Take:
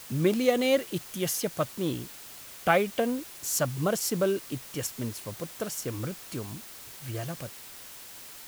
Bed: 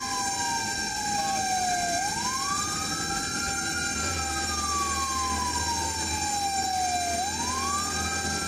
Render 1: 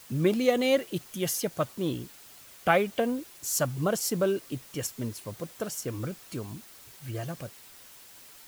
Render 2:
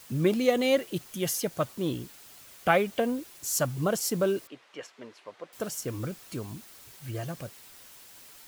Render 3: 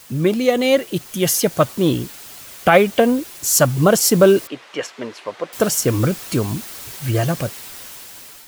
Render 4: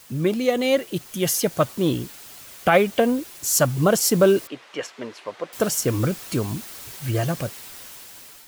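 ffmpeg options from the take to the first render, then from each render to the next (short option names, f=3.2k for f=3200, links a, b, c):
-af "afftdn=nr=6:nf=-46"
-filter_complex "[0:a]asettb=1/sr,asplit=3[a][b][c];[a]atrim=end=4.474[d];[b]atrim=start=4.47:end=5.53,asetpts=PTS-STARTPTS,afade=t=in:d=0.004:c=qsin,afade=t=out:st=1.056:d=0.004:c=qsin,highpass=530,lowpass=2.7k[e];[c]atrim=start=5.526[f];[d][e]acrossfade=d=0.004:c1=hsin:c2=qsin[g];[g][f]acrossfade=d=0.004:c1=qsin:c2=hsin"
-af "dynaudnorm=f=490:g=5:m=9.5dB,alimiter=level_in=7dB:limit=-1dB:release=50:level=0:latency=1"
-af "volume=-4.5dB"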